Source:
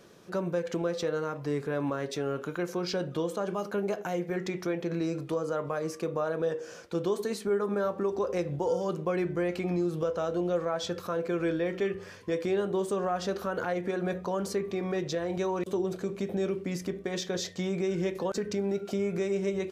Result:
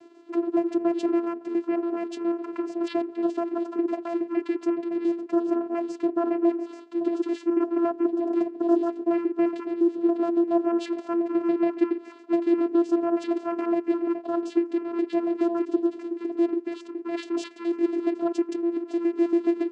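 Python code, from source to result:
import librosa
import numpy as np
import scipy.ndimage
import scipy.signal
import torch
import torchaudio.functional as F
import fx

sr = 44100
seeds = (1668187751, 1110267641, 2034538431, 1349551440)

y = fx.pitch_trill(x, sr, semitones=-8.0, every_ms=70)
y = fx.vocoder(y, sr, bands=8, carrier='saw', carrier_hz=340.0)
y = F.gain(torch.from_numpy(y), 7.0).numpy()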